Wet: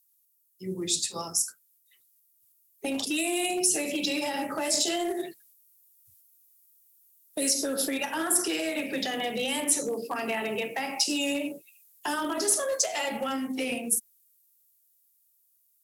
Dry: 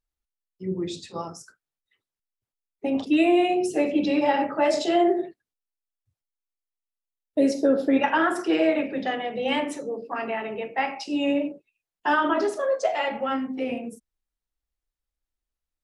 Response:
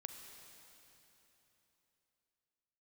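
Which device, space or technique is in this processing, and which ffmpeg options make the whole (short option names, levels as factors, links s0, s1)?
FM broadcast chain: -filter_complex "[0:a]highpass=f=67:w=0.5412,highpass=f=67:w=1.3066,dynaudnorm=f=530:g=11:m=3.76,acrossover=split=340|930|6700[s0][s1][s2][s3];[s0]acompressor=threshold=0.0447:ratio=4[s4];[s1]acompressor=threshold=0.0398:ratio=4[s5];[s2]acompressor=threshold=0.0251:ratio=4[s6];[s3]acompressor=threshold=0.00562:ratio=4[s7];[s4][s5][s6][s7]amix=inputs=4:normalize=0,aemphasis=mode=production:type=75fm,alimiter=limit=0.126:level=0:latency=1:release=160,asoftclip=type=hard:threshold=0.1,lowpass=f=15000:w=0.5412,lowpass=f=15000:w=1.3066,aemphasis=mode=production:type=75fm,volume=0.708"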